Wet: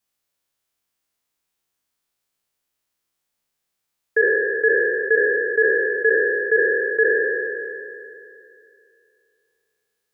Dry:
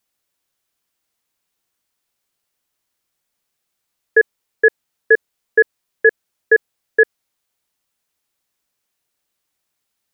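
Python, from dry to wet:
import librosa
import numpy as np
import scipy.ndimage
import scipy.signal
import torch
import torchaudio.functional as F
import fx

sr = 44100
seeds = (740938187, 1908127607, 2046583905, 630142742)

y = fx.spec_trails(x, sr, decay_s=2.65)
y = F.gain(torch.from_numpy(y), -6.5).numpy()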